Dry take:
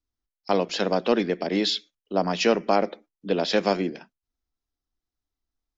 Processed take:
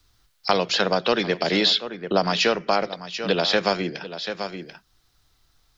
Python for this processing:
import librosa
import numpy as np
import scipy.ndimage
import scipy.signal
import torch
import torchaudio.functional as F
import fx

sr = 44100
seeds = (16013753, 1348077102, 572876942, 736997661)

y = fx.peak_eq(x, sr, hz=1400.0, db=5.0, octaves=0.76)
y = fx.rider(y, sr, range_db=10, speed_s=0.5)
y = fx.graphic_eq_10(y, sr, hz=(125, 250, 4000), db=(9, -8, 7))
y = y + 10.0 ** (-18.5 / 20.0) * np.pad(y, (int(738 * sr / 1000.0), 0))[:len(y)]
y = fx.band_squash(y, sr, depth_pct=70)
y = y * 10.0 ** (2.5 / 20.0)